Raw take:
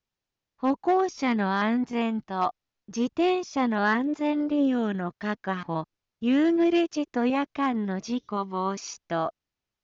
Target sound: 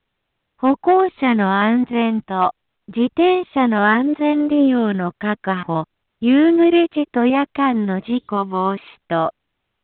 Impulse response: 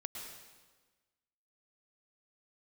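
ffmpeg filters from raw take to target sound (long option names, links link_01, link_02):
-af "volume=9dB" -ar 8000 -c:a pcm_mulaw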